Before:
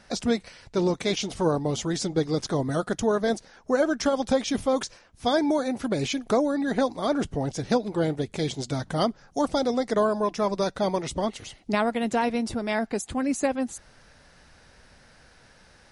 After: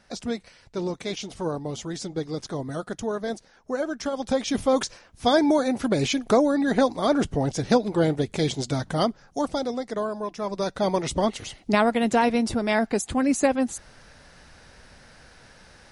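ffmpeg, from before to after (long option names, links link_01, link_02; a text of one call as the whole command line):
ffmpeg -i in.wav -af "volume=13dB,afade=type=in:start_time=4.1:duration=0.7:silence=0.375837,afade=type=out:start_time=8.52:duration=1.37:silence=0.354813,afade=type=in:start_time=10.4:duration=0.72:silence=0.334965" out.wav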